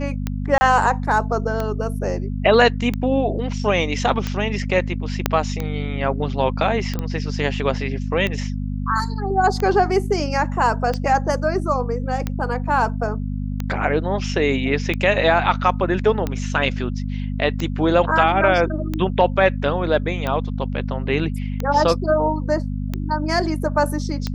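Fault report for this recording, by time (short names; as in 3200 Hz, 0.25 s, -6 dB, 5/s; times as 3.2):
hum 50 Hz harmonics 5 -25 dBFS
tick 45 rpm -11 dBFS
0.58–0.61 gap 30 ms
5.26 pop -2 dBFS
6.99 pop -13 dBFS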